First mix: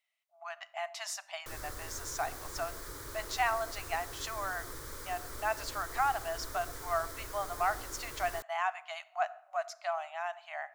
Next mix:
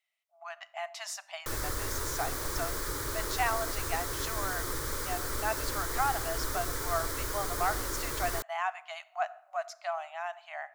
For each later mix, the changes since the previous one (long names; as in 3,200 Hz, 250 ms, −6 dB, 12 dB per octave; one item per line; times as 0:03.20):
background +9.5 dB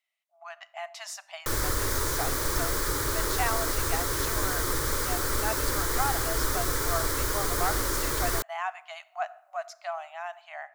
background +6.5 dB